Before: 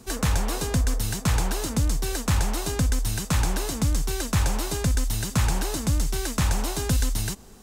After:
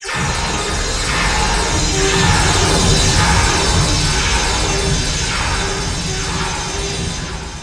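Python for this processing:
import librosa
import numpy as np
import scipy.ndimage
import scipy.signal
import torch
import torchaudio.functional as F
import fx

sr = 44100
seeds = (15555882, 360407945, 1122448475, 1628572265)

p1 = fx.spec_delay(x, sr, highs='early', ms=300)
p2 = fx.doppler_pass(p1, sr, speed_mps=6, closest_m=3.8, pass_at_s=2.73)
p3 = scipy.signal.sosfilt(scipy.signal.butter(4, 8400.0, 'lowpass', fs=sr, output='sos'), p2)
p4 = fx.low_shelf(p3, sr, hz=430.0, db=-10.0)
p5 = fx.rider(p4, sr, range_db=5, speed_s=0.5)
p6 = p4 + (p5 * librosa.db_to_amplitude(2.0))
p7 = fx.granulator(p6, sr, seeds[0], grain_ms=100.0, per_s=20.0, spray_ms=100.0, spread_st=0)
p8 = 10.0 ** (-19.5 / 20.0) * np.tanh(p7 / 10.0 ** (-19.5 / 20.0))
p9 = fx.peak_eq(p8, sr, hz=3100.0, db=4.5, octaves=2.9)
p10 = fx.doubler(p9, sr, ms=13.0, db=-6.0)
p11 = p10 + fx.echo_single(p10, sr, ms=881, db=-8.0, dry=0)
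p12 = fx.room_shoebox(p11, sr, seeds[1], volume_m3=3100.0, walls='mixed', distance_m=4.3)
y = p12 * librosa.db_to_amplitude(8.0)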